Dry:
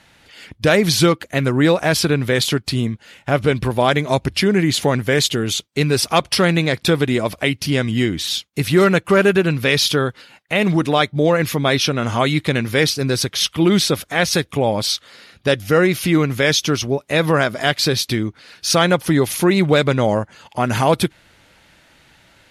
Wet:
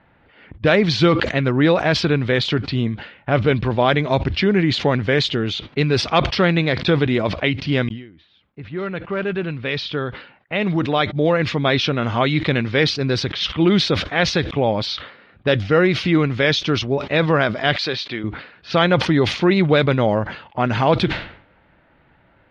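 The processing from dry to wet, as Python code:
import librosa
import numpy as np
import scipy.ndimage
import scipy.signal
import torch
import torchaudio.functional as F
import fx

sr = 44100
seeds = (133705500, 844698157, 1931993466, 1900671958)

y = fx.sustainer(x, sr, db_per_s=54.0, at=(0.94, 1.36))
y = fx.highpass(y, sr, hz=590.0, slope=6, at=(17.76, 18.24))
y = fx.edit(y, sr, fx.fade_in_span(start_s=7.89, length_s=3.77), tone=tone)
y = scipy.signal.sosfilt(scipy.signal.butter(4, 4200.0, 'lowpass', fs=sr, output='sos'), y)
y = fx.env_lowpass(y, sr, base_hz=1400.0, full_db=-14.0)
y = fx.sustainer(y, sr, db_per_s=100.0)
y = y * 10.0 ** (-1.0 / 20.0)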